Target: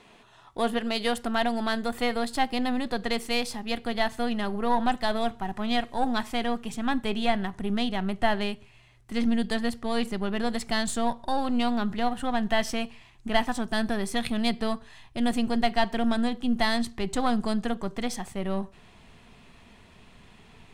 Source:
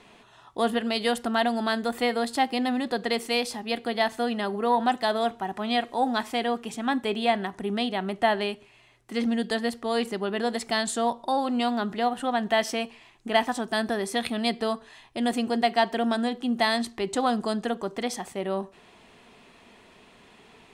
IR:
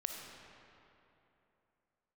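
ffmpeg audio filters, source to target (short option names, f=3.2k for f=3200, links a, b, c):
-af "aeval=exprs='if(lt(val(0),0),0.708*val(0),val(0))':c=same,asubboost=boost=4.5:cutoff=160"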